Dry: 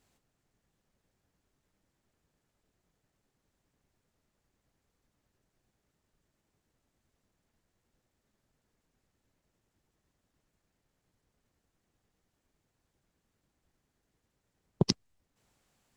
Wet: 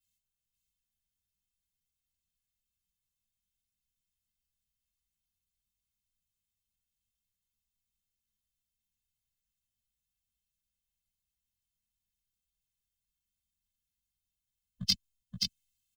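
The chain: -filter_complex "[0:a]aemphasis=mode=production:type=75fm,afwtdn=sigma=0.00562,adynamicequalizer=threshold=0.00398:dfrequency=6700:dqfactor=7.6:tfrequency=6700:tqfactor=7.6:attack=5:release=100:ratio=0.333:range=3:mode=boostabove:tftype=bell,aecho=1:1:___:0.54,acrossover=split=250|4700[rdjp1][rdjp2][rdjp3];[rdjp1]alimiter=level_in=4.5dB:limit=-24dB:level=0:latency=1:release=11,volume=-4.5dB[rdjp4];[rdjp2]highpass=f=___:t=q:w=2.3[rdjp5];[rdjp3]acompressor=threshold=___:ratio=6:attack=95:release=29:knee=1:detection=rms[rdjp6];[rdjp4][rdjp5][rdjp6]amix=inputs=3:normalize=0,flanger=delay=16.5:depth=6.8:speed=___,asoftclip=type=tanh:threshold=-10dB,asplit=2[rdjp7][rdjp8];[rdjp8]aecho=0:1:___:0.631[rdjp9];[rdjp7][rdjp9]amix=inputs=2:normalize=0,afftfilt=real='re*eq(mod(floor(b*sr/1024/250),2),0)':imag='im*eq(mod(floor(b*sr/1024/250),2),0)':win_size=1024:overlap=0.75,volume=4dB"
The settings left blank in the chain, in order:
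3.4, 3000, -34dB, 2.9, 527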